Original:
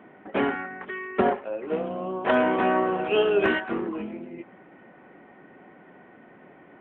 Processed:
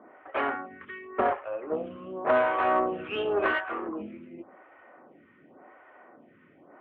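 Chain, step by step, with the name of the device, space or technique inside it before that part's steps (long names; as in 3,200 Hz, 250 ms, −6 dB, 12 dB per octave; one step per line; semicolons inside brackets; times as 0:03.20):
vibe pedal into a guitar amplifier (phaser with staggered stages 0.9 Hz; tube saturation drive 17 dB, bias 0.4; loudspeaker in its box 83–3,400 Hz, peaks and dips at 89 Hz +7 dB, 130 Hz −4 dB, 190 Hz −7 dB, 400 Hz −3 dB, 600 Hz +4 dB, 1,200 Hz +7 dB)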